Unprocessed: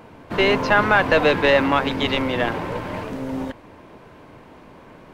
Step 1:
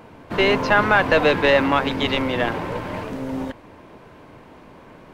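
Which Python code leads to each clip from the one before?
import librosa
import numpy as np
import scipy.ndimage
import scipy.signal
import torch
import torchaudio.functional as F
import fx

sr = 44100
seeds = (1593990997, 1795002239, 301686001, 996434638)

y = x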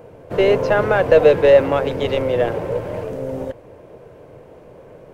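y = fx.graphic_eq(x, sr, hz=(125, 250, 500, 1000, 2000, 4000), db=(5, -8, 12, -7, -4, -7))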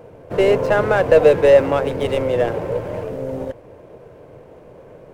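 y = scipy.signal.medfilt(x, 9)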